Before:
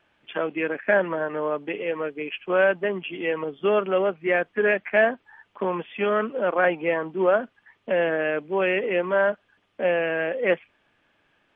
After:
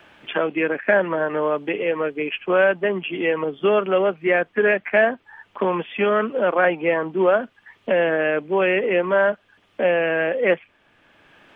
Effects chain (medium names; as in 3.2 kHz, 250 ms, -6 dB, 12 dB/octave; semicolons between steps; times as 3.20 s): three bands compressed up and down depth 40%; trim +3.5 dB